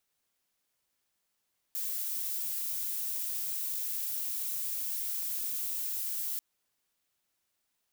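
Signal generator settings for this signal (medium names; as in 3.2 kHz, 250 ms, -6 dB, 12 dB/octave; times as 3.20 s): noise violet, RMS -34.5 dBFS 4.64 s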